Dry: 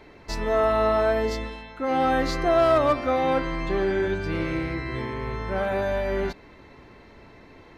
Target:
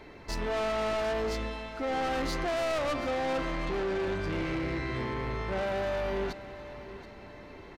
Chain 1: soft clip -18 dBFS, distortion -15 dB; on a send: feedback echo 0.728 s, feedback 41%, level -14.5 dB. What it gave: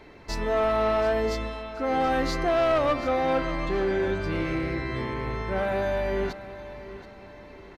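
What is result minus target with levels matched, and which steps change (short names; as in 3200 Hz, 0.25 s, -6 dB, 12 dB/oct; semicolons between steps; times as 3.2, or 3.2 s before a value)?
soft clip: distortion -9 dB
change: soft clip -28.5 dBFS, distortion -6 dB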